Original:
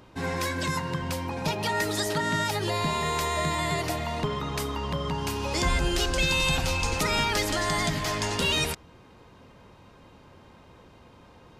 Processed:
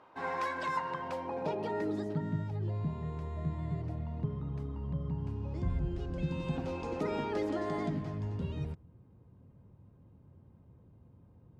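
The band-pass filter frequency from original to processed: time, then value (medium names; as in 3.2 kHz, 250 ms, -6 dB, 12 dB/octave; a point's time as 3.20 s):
band-pass filter, Q 1.3
0.90 s 950 Hz
1.82 s 310 Hz
2.44 s 110 Hz
5.96 s 110 Hz
6.79 s 350 Hz
7.82 s 350 Hz
8.23 s 110 Hz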